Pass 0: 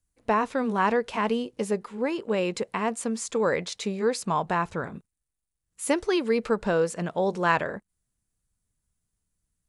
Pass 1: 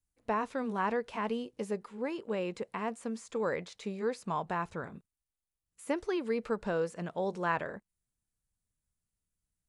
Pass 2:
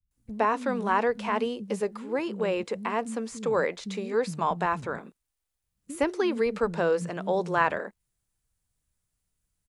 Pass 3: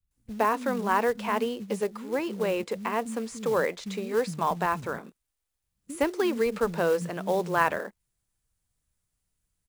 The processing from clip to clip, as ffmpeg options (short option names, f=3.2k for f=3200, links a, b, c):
-filter_complex "[0:a]acrossover=split=2500[a][b];[b]acompressor=threshold=-40dB:ratio=4:attack=1:release=60[c];[a][c]amix=inputs=2:normalize=0,volume=-8dB"
-filter_complex "[0:a]acrossover=split=220[a][b];[b]adelay=110[c];[a][c]amix=inputs=2:normalize=0,volume=7.5dB"
-af "acrusher=bits=5:mode=log:mix=0:aa=0.000001"